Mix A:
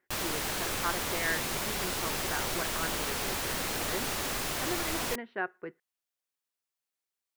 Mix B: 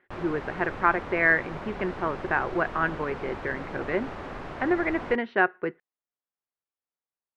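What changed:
speech +11.5 dB; background: add LPF 1400 Hz 12 dB/oct

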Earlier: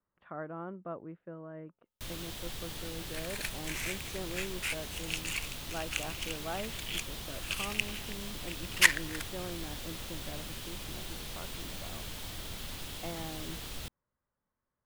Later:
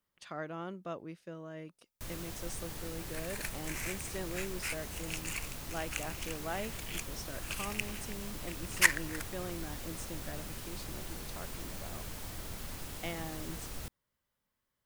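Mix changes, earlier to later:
speech: remove LPF 1500 Hz 24 dB/oct; master: add bell 3400 Hz -9 dB 0.87 oct

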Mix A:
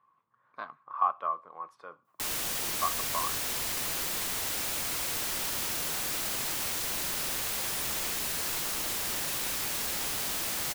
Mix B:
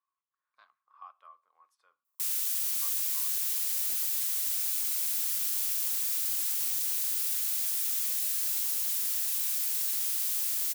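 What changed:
speech -6.0 dB; master: add differentiator

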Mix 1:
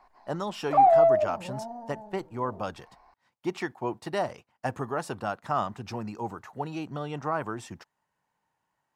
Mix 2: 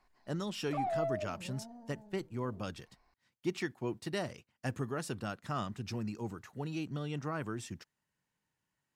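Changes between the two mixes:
background -4.0 dB; master: add bell 840 Hz -14.5 dB 1.5 oct

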